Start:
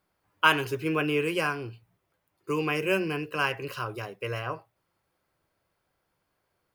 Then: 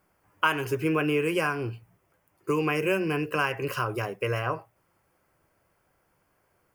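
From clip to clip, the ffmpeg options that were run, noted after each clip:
-af "acompressor=threshold=0.0251:ratio=2.5,equalizer=f=3900:t=o:w=0.52:g=-12,volume=2.37"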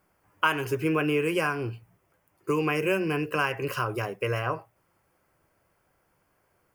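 -af anull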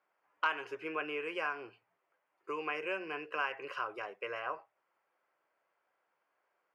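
-af "aeval=exprs='clip(val(0),-1,0.178)':c=same,highpass=580,lowpass=3200,volume=0.447"

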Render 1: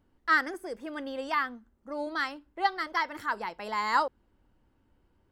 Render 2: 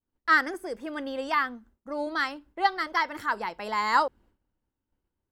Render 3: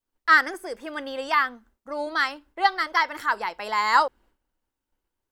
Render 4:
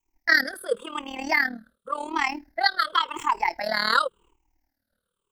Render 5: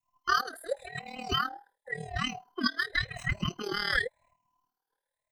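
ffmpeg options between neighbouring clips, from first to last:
-af "agate=range=0.0224:threshold=0.00178:ratio=3:detection=peak,volume=1.41"
-af "equalizer=f=120:w=0.38:g=-12,volume=1.78"
-filter_complex "[0:a]afftfilt=real='re*pow(10,22/40*sin(2*PI*(0.7*log(max(b,1)*sr/1024/100)/log(2)-(-0.91)*(pts-256)/sr)))':imag='im*pow(10,22/40*sin(2*PI*(0.7*log(max(b,1)*sr/1024/100)/log(2)-(-0.91)*(pts-256)/sr)))':win_size=1024:overlap=0.75,tremolo=f=38:d=0.788,acrossover=split=450|3000[s0][s1][s2];[s1]acompressor=threshold=0.0794:ratio=6[s3];[s0][s3][s2]amix=inputs=3:normalize=0,volume=1.33"
-af "afftfilt=real='real(if(between(b,1,1008),(2*floor((b-1)/48)+1)*48-b,b),0)':imag='imag(if(between(b,1,1008),(2*floor((b-1)/48)+1)*48-b,b),0)*if(between(b,1,1008),-1,1)':win_size=2048:overlap=0.75,volume=0.447"

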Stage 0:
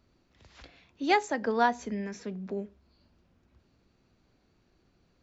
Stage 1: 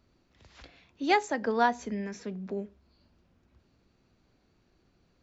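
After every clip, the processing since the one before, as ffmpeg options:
-af anull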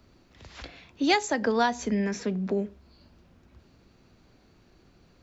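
-filter_complex "[0:a]acrossover=split=150|3000[s0][s1][s2];[s1]acompressor=threshold=0.0224:ratio=3[s3];[s0][s3][s2]amix=inputs=3:normalize=0,volume=2.82"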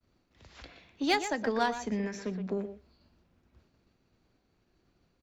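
-filter_complex "[0:a]asplit=2[s0][s1];[s1]adelay=120,highpass=300,lowpass=3400,asoftclip=type=hard:threshold=0.119,volume=0.447[s2];[s0][s2]amix=inputs=2:normalize=0,agate=range=0.0224:threshold=0.00224:ratio=3:detection=peak,aeval=exprs='0.299*(cos(1*acos(clip(val(0)/0.299,-1,1)))-cos(1*PI/2))+0.0119*(cos(7*acos(clip(val(0)/0.299,-1,1)))-cos(7*PI/2))':c=same,volume=0.596"

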